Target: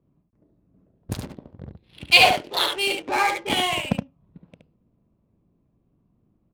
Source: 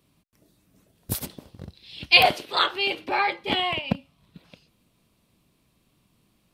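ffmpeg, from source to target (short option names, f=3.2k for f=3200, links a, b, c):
-filter_complex "[0:a]asettb=1/sr,asplit=3[a][b][c];[a]atrim=end=2.354[d];[b]atrim=start=2.35:end=2.98,asetpts=PTS-STARTPTS,afade=t=in:d=0.004:c=qsin,afade=t=out:st=0.626:d=0.004:c=qsin,equalizer=f=1.3k:t=o:w=0.55:g=-10.5[e];[c]atrim=start=2.976[f];[d][e]acrossfade=d=0.004:c1=hsin:c2=qsin[g];[g][f]acrossfade=d=0.004:c1=qsin:c2=hsin,adynamicsmooth=sensitivity=7:basefreq=660,aecho=1:1:71:0.562,volume=1dB"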